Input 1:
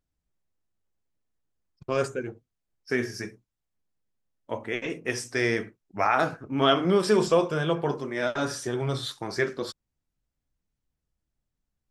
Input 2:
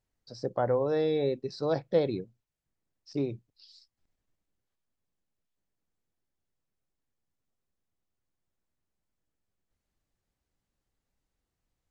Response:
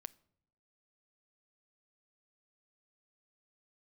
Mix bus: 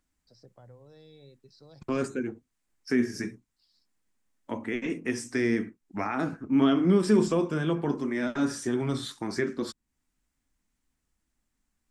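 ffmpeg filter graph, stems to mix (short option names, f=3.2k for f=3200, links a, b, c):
-filter_complex "[0:a]equalizer=f=125:t=o:w=1:g=-8,equalizer=f=250:t=o:w=1:g=8,equalizer=f=500:t=o:w=1:g=-4,equalizer=f=1k:t=o:w=1:g=4,equalizer=f=2k:t=o:w=1:g=6,equalizer=f=8k:t=o:w=1:g=8,acrossover=split=370[a][b];[b]acompressor=threshold=-48dB:ratio=2[c];[a][c]amix=inputs=2:normalize=0,volume=3dB[d];[1:a]acrossover=split=160|3000[e][f][g];[f]acompressor=threshold=-41dB:ratio=5[h];[e][h][g]amix=inputs=3:normalize=0,volume=-14dB[i];[d][i]amix=inputs=2:normalize=0"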